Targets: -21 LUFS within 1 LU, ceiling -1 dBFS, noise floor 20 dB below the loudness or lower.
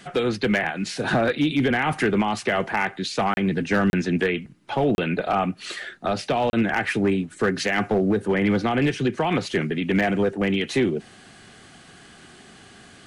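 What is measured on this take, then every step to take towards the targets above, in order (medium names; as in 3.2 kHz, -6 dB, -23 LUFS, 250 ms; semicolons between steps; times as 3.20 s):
clipped samples 0.7%; clipping level -14.0 dBFS; dropouts 4; longest dropout 31 ms; loudness -23.5 LUFS; peak level -14.0 dBFS; loudness target -21.0 LUFS
-> clip repair -14 dBFS; interpolate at 3.34/3.90/4.95/6.50 s, 31 ms; trim +2.5 dB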